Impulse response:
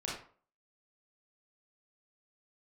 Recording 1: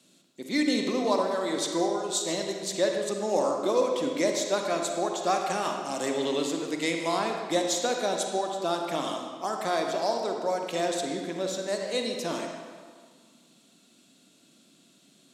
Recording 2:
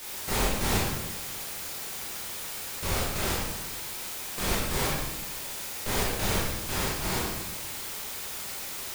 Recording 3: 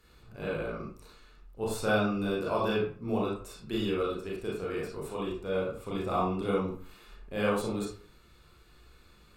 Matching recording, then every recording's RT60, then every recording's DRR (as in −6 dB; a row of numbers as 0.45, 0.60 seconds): 3; 1.8, 1.1, 0.45 seconds; 2.0, −7.0, −5.5 decibels